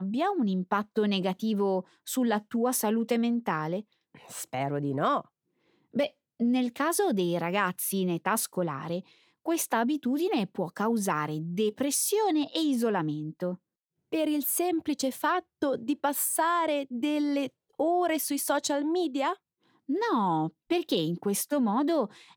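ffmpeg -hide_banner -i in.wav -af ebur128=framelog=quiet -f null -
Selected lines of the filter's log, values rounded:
Integrated loudness:
  I:         -28.7 LUFS
  Threshold: -38.9 LUFS
Loudness range:
  LRA:         2.0 LU
  Threshold: -49.1 LUFS
  LRA low:   -30.0 LUFS
  LRA high:  -28.1 LUFS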